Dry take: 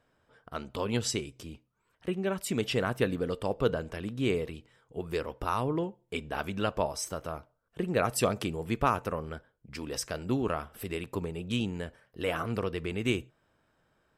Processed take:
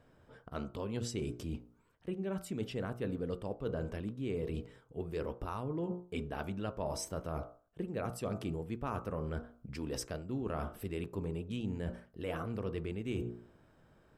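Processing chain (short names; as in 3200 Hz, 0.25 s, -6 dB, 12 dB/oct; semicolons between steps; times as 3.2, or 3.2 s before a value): tilt shelf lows +5 dB, about 660 Hz; de-hum 59.38 Hz, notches 26; reverse; compressor 6:1, threshold -41 dBFS, peak gain reduction 19.5 dB; reverse; gain +5.5 dB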